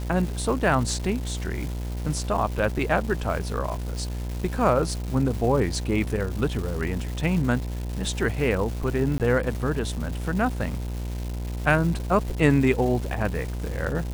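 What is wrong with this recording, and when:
buzz 60 Hz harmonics 17 -30 dBFS
crackle 530 per s -32 dBFS
9.18–9.20 s: dropout 18 ms

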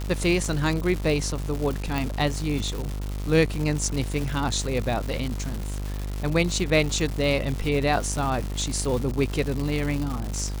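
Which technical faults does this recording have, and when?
buzz 50 Hz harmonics 28 -30 dBFS
crackle 300 per s -28 dBFS
1.98 s: pop

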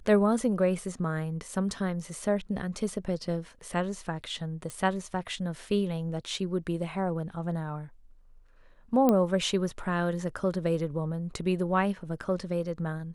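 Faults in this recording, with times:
4.70 s: pop -23 dBFS
9.09 s: pop -12 dBFS

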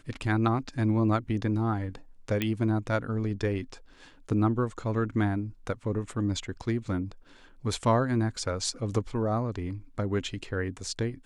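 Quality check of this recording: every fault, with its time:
2.42 s: pop -14 dBFS

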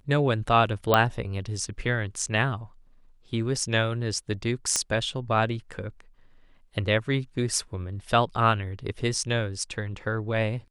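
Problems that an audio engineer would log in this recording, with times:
0.94 s: pop -6 dBFS
4.76 s: pop -8 dBFS

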